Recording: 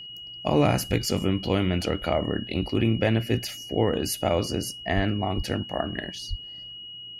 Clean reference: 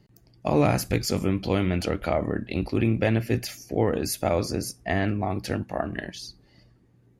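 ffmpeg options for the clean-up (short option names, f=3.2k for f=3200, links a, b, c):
-filter_complex "[0:a]bandreject=f=2.9k:w=30,asplit=3[a][b][c];[a]afade=t=out:st=4.95:d=0.02[d];[b]highpass=f=140:w=0.5412,highpass=f=140:w=1.3066,afade=t=in:st=4.95:d=0.02,afade=t=out:st=5.07:d=0.02[e];[c]afade=t=in:st=5.07:d=0.02[f];[d][e][f]amix=inputs=3:normalize=0,asplit=3[g][h][i];[g]afade=t=out:st=5.36:d=0.02[j];[h]highpass=f=140:w=0.5412,highpass=f=140:w=1.3066,afade=t=in:st=5.36:d=0.02,afade=t=out:st=5.48:d=0.02[k];[i]afade=t=in:st=5.48:d=0.02[l];[j][k][l]amix=inputs=3:normalize=0,asplit=3[m][n][o];[m]afade=t=out:st=6.29:d=0.02[p];[n]highpass=f=140:w=0.5412,highpass=f=140:w=1.3066,afade=t=in:st=6.29:d=0.02,afade=t=out:st=6.41:d=0.02[q];[o]afade=t=in:st=6.41:d=0.02[r];[p][q][r]amix=inputs=3:normalize=0"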